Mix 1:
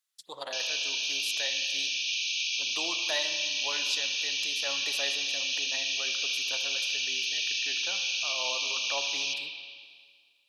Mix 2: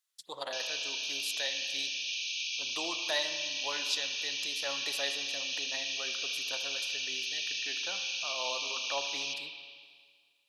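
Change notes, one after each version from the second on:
background -5.0 dB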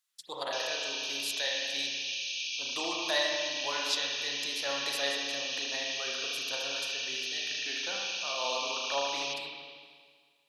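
speech: send +11.0 dB

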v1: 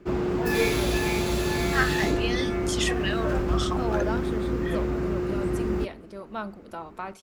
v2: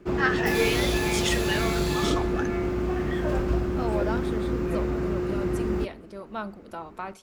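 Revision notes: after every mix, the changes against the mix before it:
first voice: entry -1.55 s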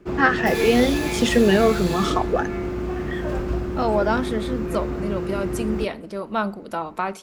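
first voice: remove passive tone stack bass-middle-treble 10-0-10; second voice +10.0 dB

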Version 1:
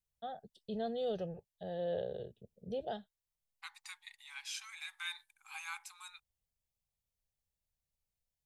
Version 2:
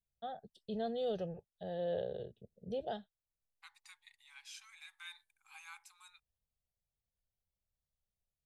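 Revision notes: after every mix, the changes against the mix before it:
second voice -8.5 dB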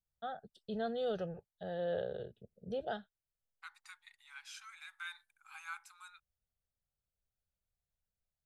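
master: add bell 1400 Hz +13 dB 0.49 oct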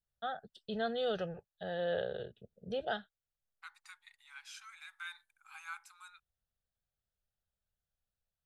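first voice: add bell 2400 Hz +8.5 dB 2.4 oct

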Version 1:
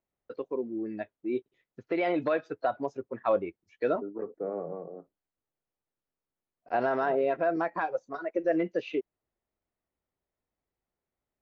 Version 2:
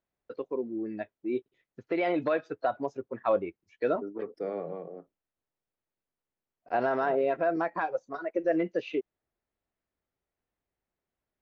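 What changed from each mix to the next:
second voice: remove LPF 1400 Hz 24 dB/oct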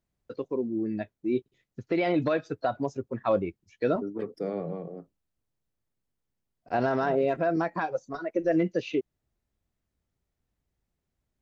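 master: add tone controls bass +13 dB, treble +13 dB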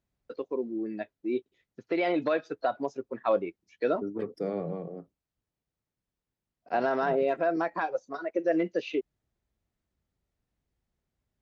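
first voice: add BPF 310–5600 Hz

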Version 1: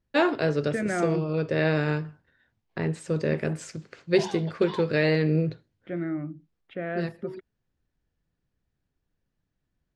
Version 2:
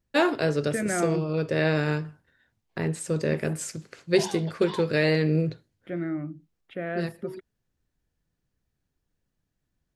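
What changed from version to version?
master: remove Bessel low-pass 4400 Hz, order 2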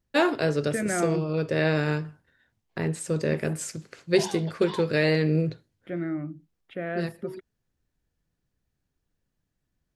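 none

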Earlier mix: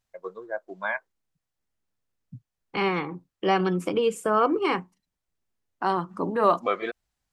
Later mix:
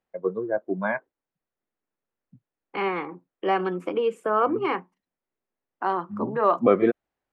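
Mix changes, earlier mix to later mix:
first voice: remove HPF 830 Hz 12 dB/oct; master: add three-band isolator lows -16 dB, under 230 Hz, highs -17 dB, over 2800 Hz

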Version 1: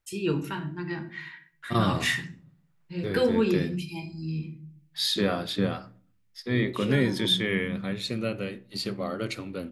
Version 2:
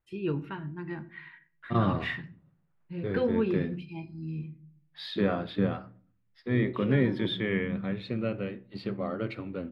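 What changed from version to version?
first voice: send -8.0 dB; master: add air absorption 430 m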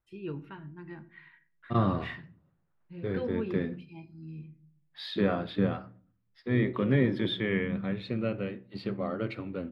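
first voice -7.0 dB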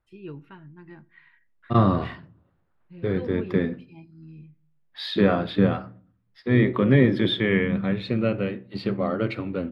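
first voice: send -9.5 dB; second voice +7.5 dB

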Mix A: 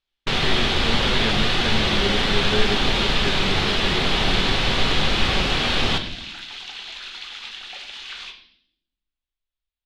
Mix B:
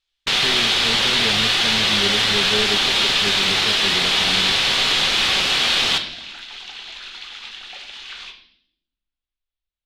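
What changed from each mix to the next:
first sound: add tilt +3.5 dB/oct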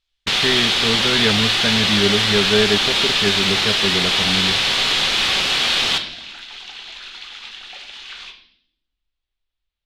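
speech +8.0 dB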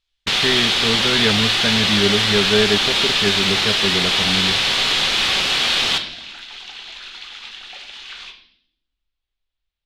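none

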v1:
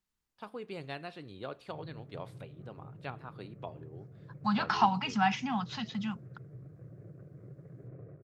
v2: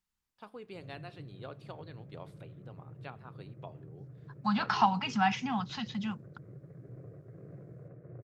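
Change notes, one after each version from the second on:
first voice -4.5 dB; background: entry -0.95 s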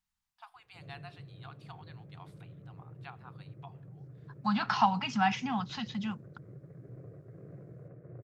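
first voice: add brick-wall FIR high-pass 670 Hz

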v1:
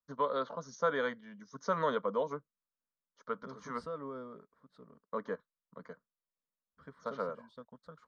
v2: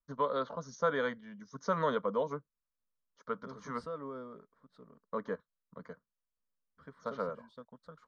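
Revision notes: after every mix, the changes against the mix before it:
first voice: remove HPF 180 Hz 6 dB/oct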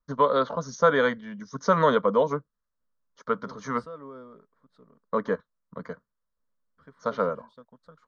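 first voice +10.5 dB

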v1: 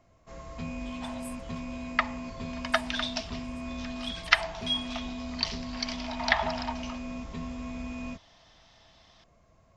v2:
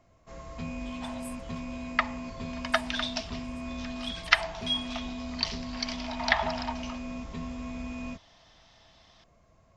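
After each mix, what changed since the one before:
none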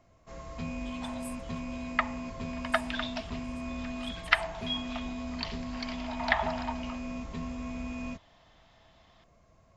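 second sound: add air absorption 230 m

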